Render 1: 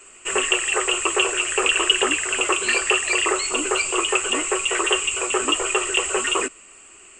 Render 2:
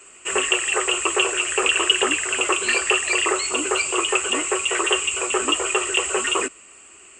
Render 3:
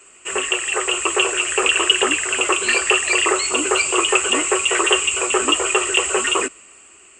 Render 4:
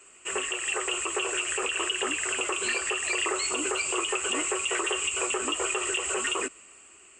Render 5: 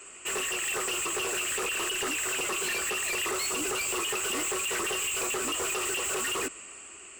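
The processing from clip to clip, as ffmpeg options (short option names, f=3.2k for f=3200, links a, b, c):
-af "highpass=45"
-af "dynaudnorm=f=250:g=7:m=11.5dB,volume=-1dB"
-af "alimiter=limit=-12dB:level=0:latency=1:release=137,volume=-6dB"
-af "asoftclip=type=tanh:threshold=-35dB,volume=6.5dB"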